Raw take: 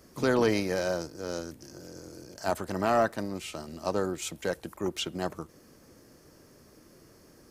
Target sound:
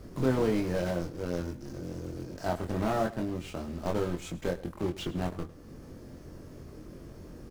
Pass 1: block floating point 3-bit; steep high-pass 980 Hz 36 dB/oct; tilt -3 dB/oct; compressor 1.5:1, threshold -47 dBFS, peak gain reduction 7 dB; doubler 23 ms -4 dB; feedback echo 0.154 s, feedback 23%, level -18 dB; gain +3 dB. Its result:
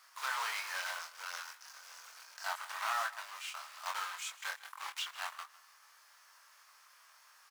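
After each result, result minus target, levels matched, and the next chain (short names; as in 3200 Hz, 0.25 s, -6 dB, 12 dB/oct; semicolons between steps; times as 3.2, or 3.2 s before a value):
echo 50 ms late; 1000 Hz band +5.5 dB
block floating point 3-bit; steep high-pass 980 Hz 36 dB/oct; tilt -3 dB/oct; compressor 1.5:1, threshold -47 dBFS, peak gain reduction 7 dB; doubler 23 ms -4 dB; feedback echo 0.104 s, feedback 23%, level -18 dB; gain +3 dB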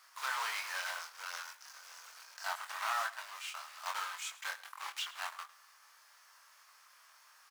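1000 Hz band +5.5 dB
block floating point 3-bit; tilt -3 dB/oct; compressor 1.5:1, threshold -47 dBFS, peak gain reduction 11 dB; doubler 23 ms -4 dB; feedback echo 0.104 s, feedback 23%, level -18 dB; gain +3 dB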